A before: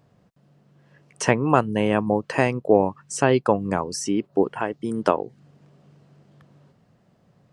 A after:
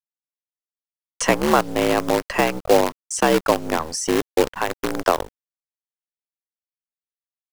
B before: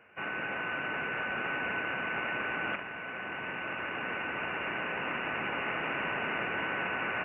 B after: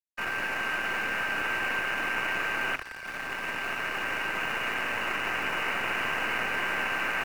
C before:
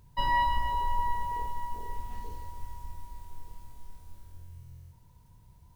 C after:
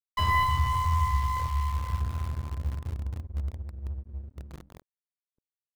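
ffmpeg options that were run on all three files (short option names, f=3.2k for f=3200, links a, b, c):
-filter_complex "[0:a]agate=range=-33dB:threshold=-54dB:ratio=3:detection=peak,anlmdn=1,asplit=2[a][b];[b]acompressor=threshold=-33dB:ratio=6,volume=3dB[c];[a][c]amix=inputs=2:normalize=0,afreqshift=64,acrossover=split=120|920[d][e][f];[e]acrusher=bits=4:dc=4:mix=0:aa=0.000001[g];[d][g][f]amix=inputs=3:normalize=0,aeval=exprs='sgn(val(0))*max(abs(val(0))-0.00473,0)':c=same"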